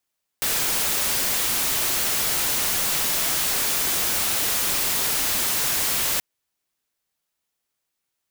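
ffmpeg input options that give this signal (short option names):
-f lavfi -i "anoisesrc=c=white:a=0.123:d=5.78:r=44100:seed=1"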